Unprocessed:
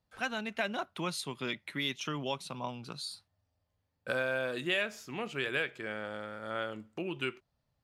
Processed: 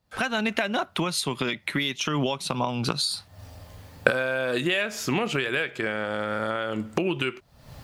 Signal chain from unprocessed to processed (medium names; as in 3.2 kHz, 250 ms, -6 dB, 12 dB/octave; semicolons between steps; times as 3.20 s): recorder AGC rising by 65 dB/s; trim +5.5 dB